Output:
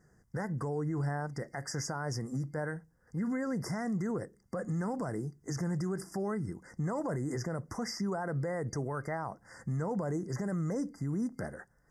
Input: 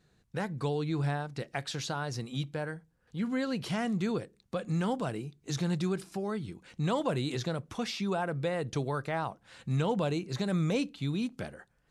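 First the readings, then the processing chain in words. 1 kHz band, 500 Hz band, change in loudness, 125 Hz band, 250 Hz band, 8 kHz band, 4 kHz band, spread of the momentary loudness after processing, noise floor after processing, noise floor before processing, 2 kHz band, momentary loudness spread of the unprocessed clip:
-3.5 dB, -3.0 dB, -2.5 dB, -2.0 dB, -2.0 dB, +1.0 dB, -8.5 dB, 6 LU, -68 dBFS, -71 dBFS, -3.5 dB, 8 LU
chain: FFT band-reject 2.1–4.7 kHz; peak limiter -30 dBFS, peak gain reduction 11 dB; trim +3 dB

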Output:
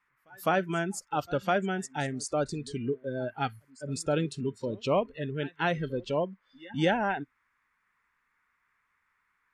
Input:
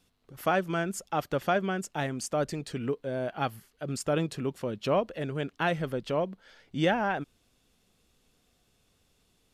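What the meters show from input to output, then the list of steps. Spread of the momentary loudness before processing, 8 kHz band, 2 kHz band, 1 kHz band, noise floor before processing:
7 LU, 0.0 dB, 0.0 dB, -0.5 dB, -70 dBFS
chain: pre-echo 207 ms -16 dB; band noise 970–2200 Hz -55 dBFS; spectral noise reduction 20 dB

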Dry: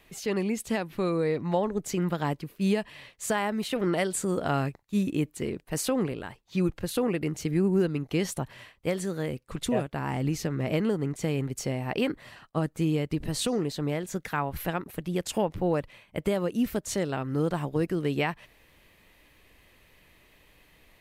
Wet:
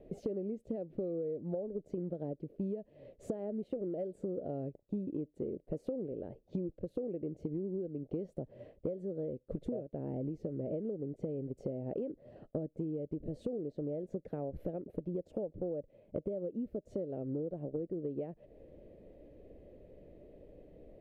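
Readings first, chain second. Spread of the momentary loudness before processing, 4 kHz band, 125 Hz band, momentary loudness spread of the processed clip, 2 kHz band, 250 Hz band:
6 LU, under -30 dB, -12.5 dB, 18 LU, under -35 dB, -10.5 dB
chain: FFT filter 130 Hz 0 dB, 580 Hz +10 dB, 1 kHz -22 dB; compression 16:1, threshold -38 dBFS, peak gain reduction 24.5 dB; low-pass 2.7 kHz 6 dB/octave; trim +3.5 dB

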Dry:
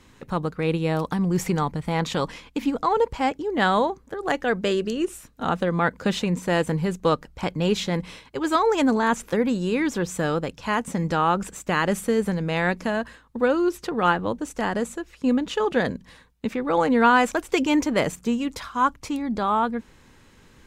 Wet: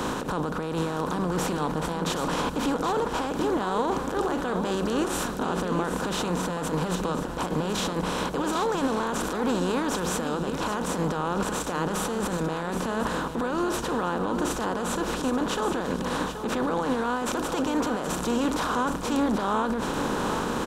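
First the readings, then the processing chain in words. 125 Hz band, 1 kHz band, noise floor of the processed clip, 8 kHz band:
-3.5 dB, -3.0 dB, -32 dBFS, +3.5 dB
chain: spectral levelling over time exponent 0.4; peaking EQ 2.1 kHz -10 dB 0.55 oct; peak limiter -18.5 dBFS, peak gain reduction 18 dB; delay 778 ms -7.5 dB; three bands expanded up and down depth 40%

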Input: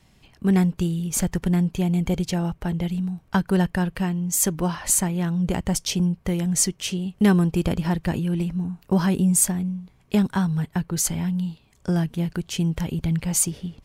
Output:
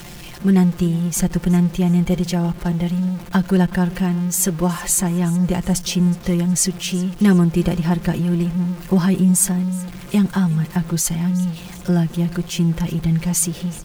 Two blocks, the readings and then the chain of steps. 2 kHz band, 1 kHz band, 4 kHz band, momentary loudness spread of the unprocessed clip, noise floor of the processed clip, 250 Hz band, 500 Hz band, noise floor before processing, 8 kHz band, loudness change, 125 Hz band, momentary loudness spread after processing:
+3.0 dB, +2.5 dB, +3.0 dB, 7 LU, -36 dBFS, +5.0 dB, +3.5 dB, -58 dBFS, +2.5 dB, +4.5 dB, +5.5 dB, 6 LU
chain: jump at every zero crossing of -32.5 dBFS; comb 5.7 ms; feedback delay 369 ms, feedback 41%, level -20 dB

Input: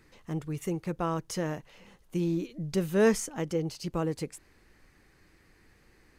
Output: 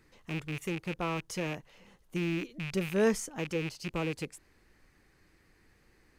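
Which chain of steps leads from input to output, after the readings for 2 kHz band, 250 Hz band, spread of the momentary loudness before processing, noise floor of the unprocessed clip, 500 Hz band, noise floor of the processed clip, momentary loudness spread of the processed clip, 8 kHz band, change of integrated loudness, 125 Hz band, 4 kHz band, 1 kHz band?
+2.0 dB, -3.5 dB, 13 LU, -63 dBFS, -3.5 dB, -66 dBFS, 12 LU, -3.5 dB, -3.0 dB, -3.5 dB, +1.0 dB, -3.0 dB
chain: rattle on loud lows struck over -38 dBFS, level -25 dBFS; trim -3.5 dB

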